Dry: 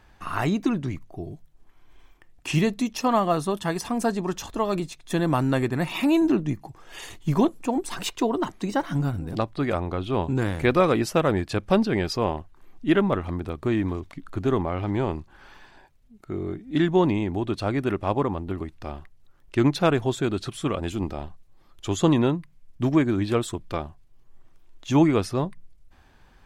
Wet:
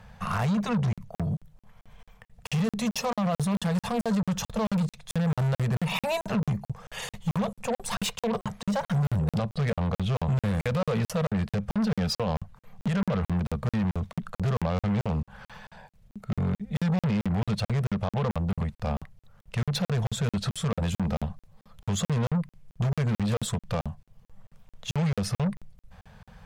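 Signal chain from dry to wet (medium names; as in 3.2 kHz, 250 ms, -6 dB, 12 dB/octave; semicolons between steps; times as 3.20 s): elliptic band-stop 210–460 Hz, stop band 40 dB; peaking EQ 200 Hz +12.5 dB 2.8 oct; peak limiter -19.5 dBFS, peak gain reduction 16.5 dB; Chebyshev shaper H 5 -17 dB, 7 -25 dB, 8 -31 dB, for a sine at -19.5 dBFS; crackling interface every 0.22 s, samples 2048, zero, from 0.93 s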